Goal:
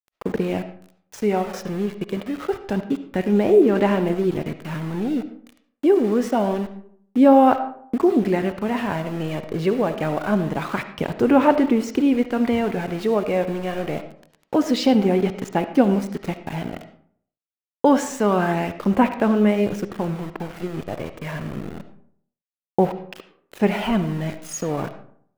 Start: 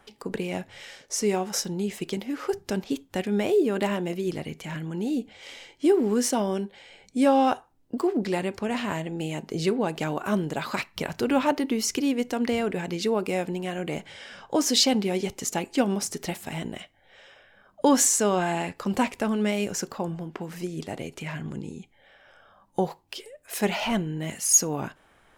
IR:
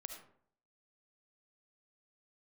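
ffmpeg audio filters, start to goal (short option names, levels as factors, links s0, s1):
-filter_complex "[0:a]aemphasis=mode=reproduction:type=75fm,aeval=exprs='val(0)*gte(abs(val(0)),0.0158)':c=same,aphaser=in_gain=1:out_gain=1:delay=1.8:decay=0.27:speed=0.26:type=sinusoidal,asplit=2[s0][s1];[1:a]atrim=start_sample=2205,lowpass=3600[s2];[s1][s2]afir=irnorm=-1:irlink=0,volume=1.58[s3];[s0][s3]amix=inputs=2:normalize=0,volume=0.891"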